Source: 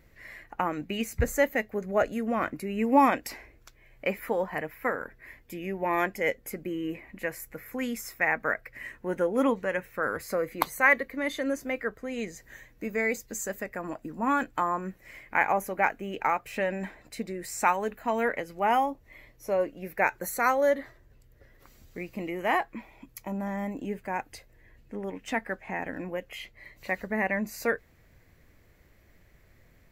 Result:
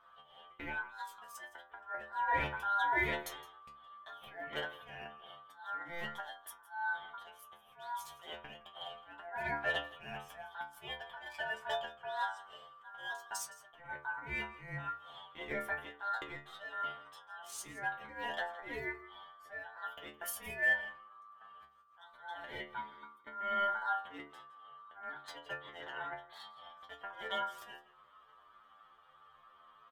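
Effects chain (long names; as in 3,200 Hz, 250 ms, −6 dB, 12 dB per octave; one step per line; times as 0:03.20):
adaptive Wiener filter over 9 samples
notch filter 1,500 Hz, Q 9.7
downward compressor 5 to 1, threshold −27 dBFS, peak gain reduction 11.5 dB
volume swells 325 ms
ring modulation 1,200 Hz
stiff-string resonator 71 Hz, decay 0.46 s, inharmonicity 0.002
single-tap delay 165 ms −18.5 dB
level +10 dB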